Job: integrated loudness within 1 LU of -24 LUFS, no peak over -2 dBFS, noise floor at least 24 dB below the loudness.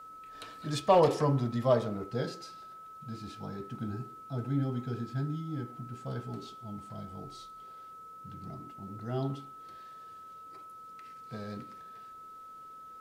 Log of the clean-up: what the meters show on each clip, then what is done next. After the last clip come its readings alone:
steady tone 1300 Hz; tone level -46 dBFS; loudness -33.5 LUFS; peak -11.5 dBFS; loudness target -24.0 LUFS
-> notch 1300 Hz, Q 30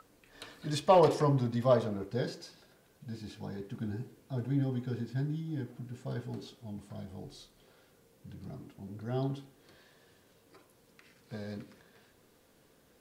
steady tone none; loudness -33.0 LUFS; peak -11.5 dBFS; loudness target -24.0 LUFS
-> gain +9 dB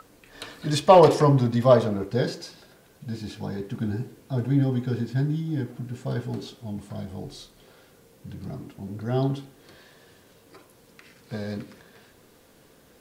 loudness -24.0 LUFS; peak -2.5 dBFS; noise floor -56 dBFS

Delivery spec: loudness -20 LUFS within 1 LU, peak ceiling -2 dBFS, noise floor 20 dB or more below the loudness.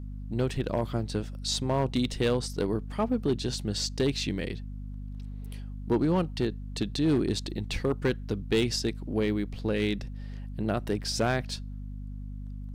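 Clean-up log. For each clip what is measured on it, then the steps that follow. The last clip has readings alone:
clipped 0.7%; flat tops at -19.0 dBFS; hum 50 Hz; harmonics up to 250 Hz; hum level -35 dBFS; loudness -29.5 LUFS; peak -19.0 dBFS; loudness target -20.0 LUFS
-> clip repair -19 dBFS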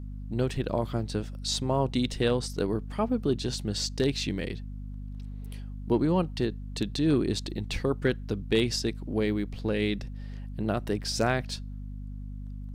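clipped 0.0%; hum 50 Hz; harmonics up to 250 Hz; hum level -35 dBFS
-> notches 50/100/150/200/250 Hz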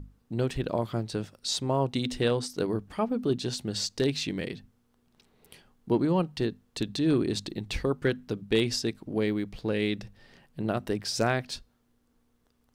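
hum none; loudness -29.5 LUFS; peak -12.5 dBFS; loudness target -20.0 LUFS
-> gain +9.5 dB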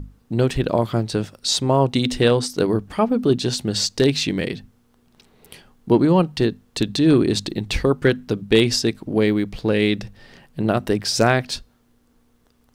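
loudness -20.0 LUFS; peak -3.0 dBFS; noise floor -60 dBFS

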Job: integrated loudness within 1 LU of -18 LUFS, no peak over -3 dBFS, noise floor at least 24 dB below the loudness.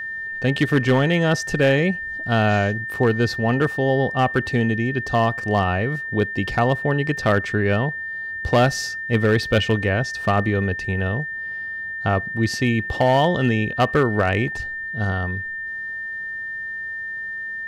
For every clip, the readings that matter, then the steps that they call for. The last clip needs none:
clipped 1.0%; flat tops at -10.0 dBFS; steady tone 1800 Hz; tone level -27 dBFS; loudness -21.5 LUFS; peak -10.0 dBFS; loudness target -18.0 LUFS
-> clip repair -10 dBFS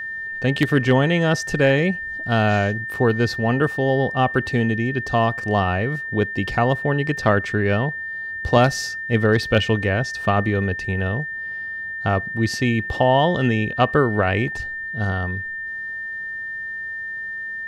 clipped 0.0%; steady tone 1800 Hz; tone level -27 dBFS
-> notch 1800 Hz, Q 30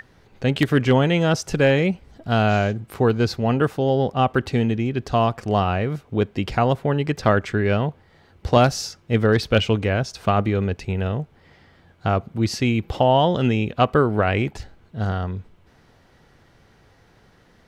steady tone none; loudness -21.0 LUFS; peak -1.5 dBFS; loudness target -18.0 LUFS
-> gain +3 dB; limiter -3 dBFS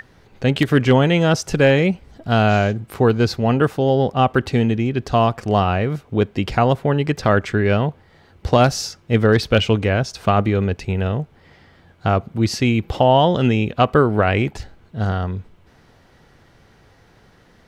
loudness -18.5 LUFS; peak -3.0 dBFS; noise floor -53 dBFS

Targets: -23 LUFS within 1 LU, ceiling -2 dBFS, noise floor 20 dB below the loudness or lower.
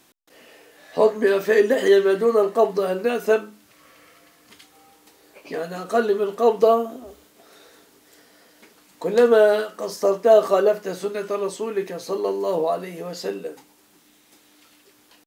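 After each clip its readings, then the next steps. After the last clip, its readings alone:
loudness -20.5 LUFS; peak -5.0 dBFS; loudness target -23.0 LUFS
-> gain -2.5 dB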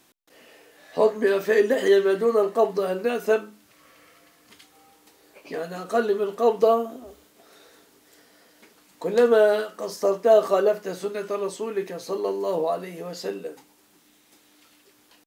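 loudness -23.0 LUFS; peak -7.5 dBFS; noise floor -60 dBFS

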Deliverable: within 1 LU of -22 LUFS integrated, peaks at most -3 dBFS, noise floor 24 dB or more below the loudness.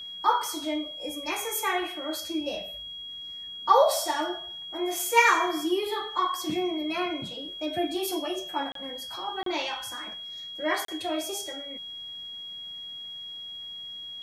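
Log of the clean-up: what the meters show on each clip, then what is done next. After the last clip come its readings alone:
dropouts 3; longest dropout 33 ms; steady tone 3300 Hz; tone level -37 dBFS; loudness -29.0 LUFS; peak -6.5 dBFS; loudness target -22.0 LUFS
-> interpolate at 8.72/9.43/10.85, 33 ms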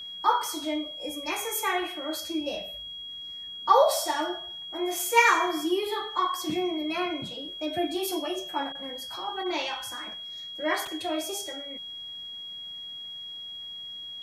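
dropouts 0; steady tone 3300 Hz; tone level -37 dBFS
-> notch 3300 Hz, Q 30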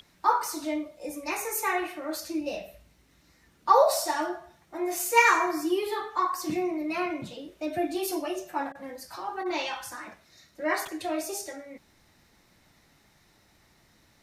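steady tone none; loudness -28.0 LUFS; peak -6.5 dBFS; loudness target -22.0 LUFS
-> gain +6 dB; limiter -3 dBFS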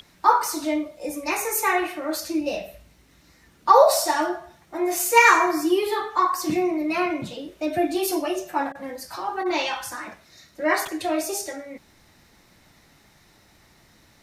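loudness -22.5 LUFS; peak -3.0 dBFS; noise floor -57 dBFS

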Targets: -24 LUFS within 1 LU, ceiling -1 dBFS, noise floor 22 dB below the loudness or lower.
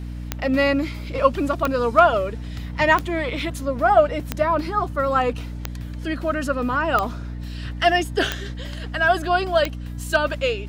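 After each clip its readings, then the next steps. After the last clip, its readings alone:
clicks 8; hum 60 Hz; harmonics up to 300 Hz; hum level -29 dBFS; loudness -21.5 LUFS; peak -3.0 dBFS; loudness target -24.0 LUFS
-> de-click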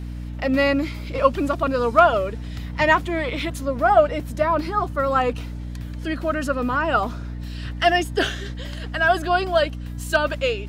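clicks 0; hum 60 Hz; harmonics up to 300 Hz; hum level -29 dBFS
-> de-hum 60 Hz, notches 5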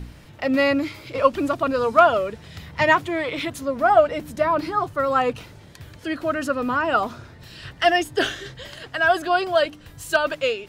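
hum none; loudness -21.5 LUFS; peak -3.0 dBFS; loudness target -24.0 LUFS
-> gain -2.5 dB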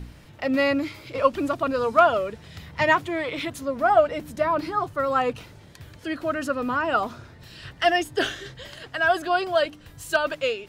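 loudness -24.0 LUFS; peak -5.5 dBFS; noise floor -48 dBFS

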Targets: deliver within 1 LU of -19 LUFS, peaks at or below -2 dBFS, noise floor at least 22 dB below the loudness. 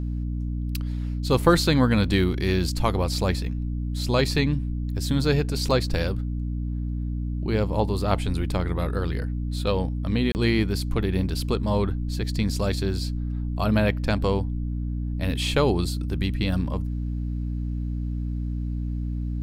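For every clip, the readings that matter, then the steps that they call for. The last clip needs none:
dropouts 1; longest dropout 29 ms; hum 60 Hz; harmonics up to 300 Hz; hum level -25 dBFS; loudness -25.5 LUFS; peak -4.5 dBFS; loudness target -19.0 LUFS
-> interpolate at 10.32, 29 ms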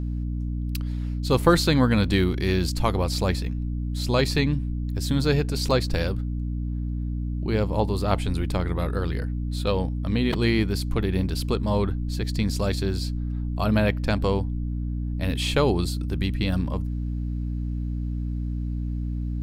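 dropouts 0; hum 60 Hz; harmonics up to 300 Hz; hum level -25 dBFS
-> notches 60/120/180/240/300 Hz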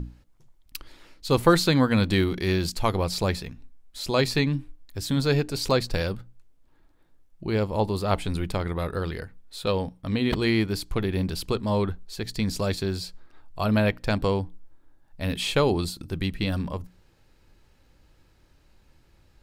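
hum none; loudness -26.0 LUFS; peak -5.0 dBFS; loudness target -19.0 LUFS
-> gain +7 dB; limiter -2 dBFS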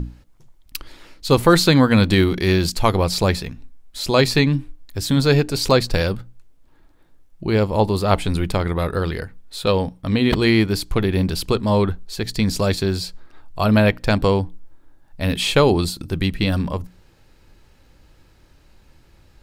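loudness -19.0 LUFS; peak -2.0 dBFS; noise floor -53 dBFS

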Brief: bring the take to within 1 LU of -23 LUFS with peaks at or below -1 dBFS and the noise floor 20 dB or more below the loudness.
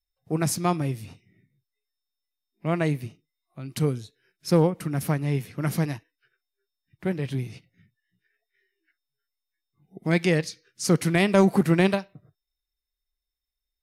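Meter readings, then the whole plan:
loudness -25.0 LUFS; peak -9.5 dBFS; loudness target -23.0 LUFS
-> gain +2 dB

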